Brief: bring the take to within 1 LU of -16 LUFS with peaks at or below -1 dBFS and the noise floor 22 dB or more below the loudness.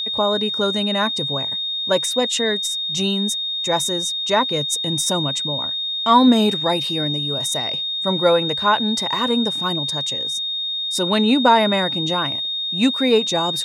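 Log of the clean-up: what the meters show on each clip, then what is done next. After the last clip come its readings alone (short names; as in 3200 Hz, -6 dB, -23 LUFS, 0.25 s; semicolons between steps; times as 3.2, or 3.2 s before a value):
steady tone 3700 Hz; tone level -22 dBFS; loudness -18.5 LUFS; peak -3.0 dBFS; loudness target -16.0 LUFS
-> notch 3700 Hz, Q 30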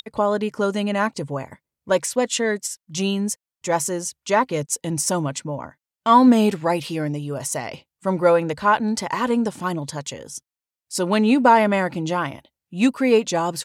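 steady tone none; loudness -21.0 LUFS; peak -3.5 dBFS; loudness target -16.0 LUFS
-> gain +5 dB; limiter -1 dBFS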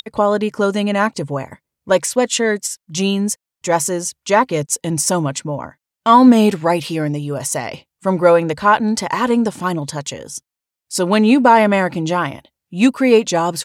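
loudness -16.5 LUFS; peak -1.0 dBFS; noise floor -86 dBFS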